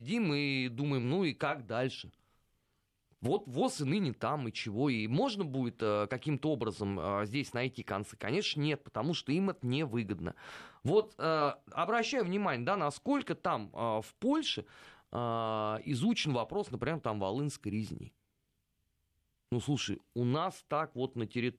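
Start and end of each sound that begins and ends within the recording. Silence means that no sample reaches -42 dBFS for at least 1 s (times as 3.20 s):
3.23–18.07 s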